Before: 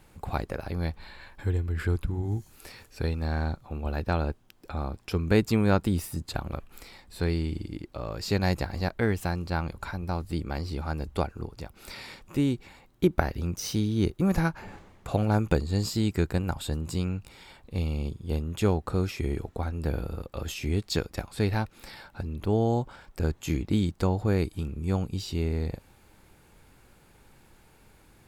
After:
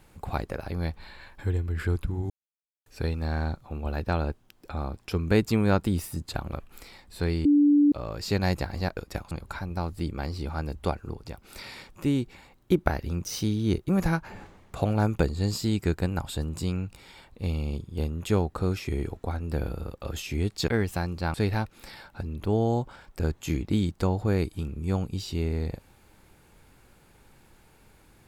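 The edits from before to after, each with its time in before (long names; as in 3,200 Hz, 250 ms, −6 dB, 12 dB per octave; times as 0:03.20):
0:02.30–0:02.86: silence
0:07.45–0:07.92: beep over 291 Hz −15.5 dBFS
0:08.97–0:09.63: swap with 0:21.00–0:21.34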